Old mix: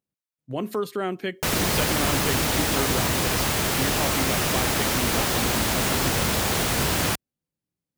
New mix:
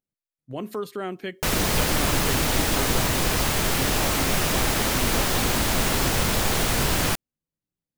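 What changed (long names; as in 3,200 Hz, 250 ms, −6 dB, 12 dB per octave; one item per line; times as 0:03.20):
speech −3.5 dB
master: remove high-pass filter 54 Hz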